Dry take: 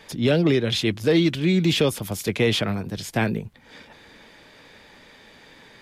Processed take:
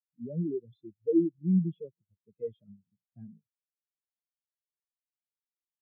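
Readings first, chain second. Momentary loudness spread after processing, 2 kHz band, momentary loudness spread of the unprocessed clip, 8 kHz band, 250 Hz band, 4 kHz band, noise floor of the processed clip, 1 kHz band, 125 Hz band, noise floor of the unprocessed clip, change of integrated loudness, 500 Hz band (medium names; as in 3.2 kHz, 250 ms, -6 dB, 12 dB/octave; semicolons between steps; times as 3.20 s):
13 LU, under -40 dB, 9 LU, under -40 dB, -8.5 dB, under -40 dB, under -85 dBFS, under -40 dB, -11.0 dB, -51 dBFS, -9.0 dB, -12.5 dB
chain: filtered feedback delay 159 ms, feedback 80%, level -22.5 dB; overload inside the chain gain 15.5 dB; spectral contrast expander 4:1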